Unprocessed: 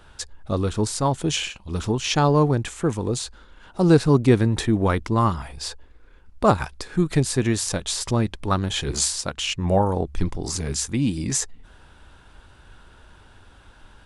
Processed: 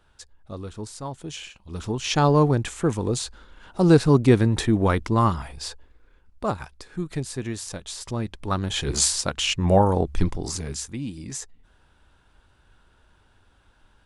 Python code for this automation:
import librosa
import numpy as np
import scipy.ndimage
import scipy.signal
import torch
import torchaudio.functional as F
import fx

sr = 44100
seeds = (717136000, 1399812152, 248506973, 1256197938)

y = fx.gain(x, sr, db=fx.line((1.35, -12.0), (2.25, 0.0), (5.35, 0.0), (6.51, -9.0), (7.97, -9.0), (9.06, 2.0), (10.21, 2.0), (11.06, -10.0)))